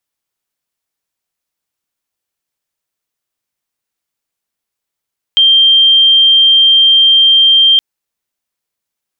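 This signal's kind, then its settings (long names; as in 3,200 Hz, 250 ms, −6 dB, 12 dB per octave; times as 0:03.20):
tone sine 3,170 Hz −4 dBFS 2.42 s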